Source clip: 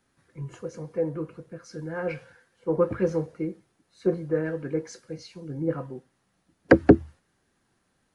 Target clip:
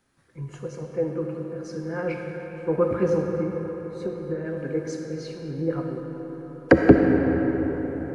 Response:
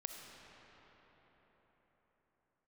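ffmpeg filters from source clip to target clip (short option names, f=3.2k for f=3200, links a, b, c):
-filter_complex "[0:a]asettb=1/sr,asplit=3[a][b][c];[a]atrim=end=3.314[d];[b]atrim=start=3.31:end=4.57,asetpts=PTS-STARTPTS,afade=t=in:d=0.004:c=qsin,afade=t=out:st=1.256:d=0.004:c=qsin,acompressor=threshold=-29dB:ratio=6[e];[c]atrim=start=4.566[f];[d][e]acrossfade=d=0.004:c1=hsin:c2=qsin[g];[g][f]acrossfade=d=0.004:c1=qsin:c2=hsin[h];[1:a]atrim=start_sample=2205[i];[h][i]afir=irnorm=-1:irlink=0,volume=5dB"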